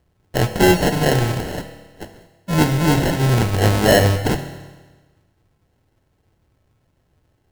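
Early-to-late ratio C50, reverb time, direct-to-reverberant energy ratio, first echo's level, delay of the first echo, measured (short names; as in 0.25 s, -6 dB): 10.0 dB, 1.3 s, 7.5 dB, none, none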